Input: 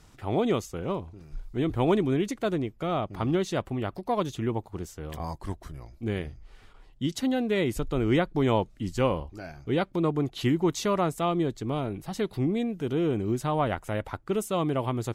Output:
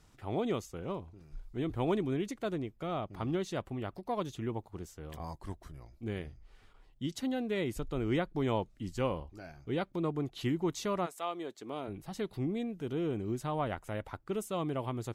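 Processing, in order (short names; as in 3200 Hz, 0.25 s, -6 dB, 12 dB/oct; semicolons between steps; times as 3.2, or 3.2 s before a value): 11.05–11.87 HPF 750 Hz -> 250 Hz 12 dB/oct; gain -7.5 dB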